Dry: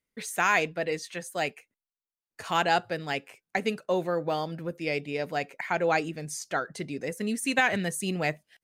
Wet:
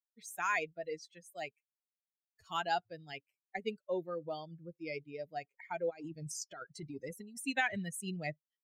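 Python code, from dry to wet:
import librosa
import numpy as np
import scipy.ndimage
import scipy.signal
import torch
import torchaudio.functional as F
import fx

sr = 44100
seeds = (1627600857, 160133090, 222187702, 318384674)

y = fx.bin_expand(x, sr, power=2.0)
y = fx.over_compress(y, sr, threshold_db=-42.0, ratio=-1.0, at=(5.89, 7.44), fade=0.02)
y = y * 10.0 ** (-6.0 / 20.0)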